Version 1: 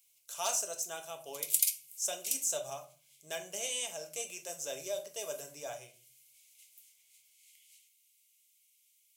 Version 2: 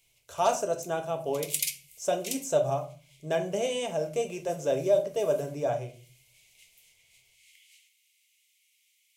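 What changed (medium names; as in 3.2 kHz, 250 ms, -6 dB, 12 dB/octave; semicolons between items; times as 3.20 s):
speech -6.5 dB; master: remove pre-emphasis filter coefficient 0.97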